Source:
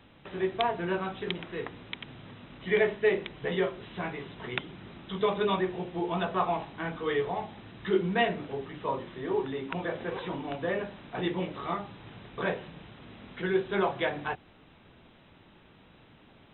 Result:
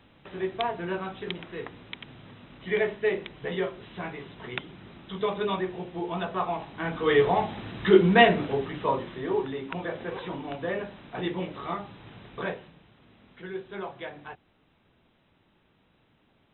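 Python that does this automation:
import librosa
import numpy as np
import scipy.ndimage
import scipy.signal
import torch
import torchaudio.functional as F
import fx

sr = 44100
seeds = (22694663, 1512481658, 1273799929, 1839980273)

y = fx.gain(x, sr, db=fx.line((6.58, -1.0), (7.23, 9.0), (8.39, 9.0), (9.65, 0.0), (12.39, 0.0), (12.81, -9.0)))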